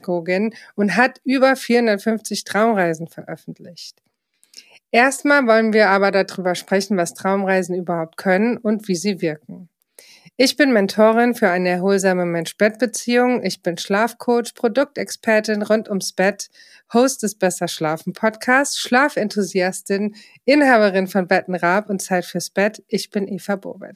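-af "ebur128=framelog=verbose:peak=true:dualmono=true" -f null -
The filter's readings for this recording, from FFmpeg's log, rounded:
Integrated loudness:
  I:         -15.3 LUFS
  Threshold: -25.8 LUFS
Loudness range:
  LRA:         3.5 LU
  Threshold: -35.7 LUFS
  LRA low:   -17.5 LUFS
  LRA high:  -14.0 LUFS
True peak:
  Peak:       -1.9 dBFS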